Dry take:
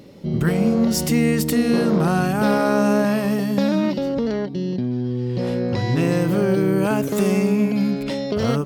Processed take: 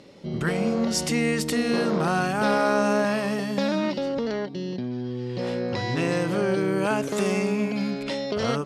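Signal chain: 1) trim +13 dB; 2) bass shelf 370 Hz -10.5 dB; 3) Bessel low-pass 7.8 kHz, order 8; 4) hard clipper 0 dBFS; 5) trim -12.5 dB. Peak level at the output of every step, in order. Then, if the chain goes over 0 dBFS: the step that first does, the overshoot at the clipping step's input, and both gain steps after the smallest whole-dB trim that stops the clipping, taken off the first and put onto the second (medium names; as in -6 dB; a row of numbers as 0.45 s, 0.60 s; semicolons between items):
+7.5 dBFS, +3.0 dBFS, +3.0 dBFS, 0.0 dBFS, -12.5 dBFS; step 1, 3.0 dB; step 1 +10 dB, step 5 -9.5 dB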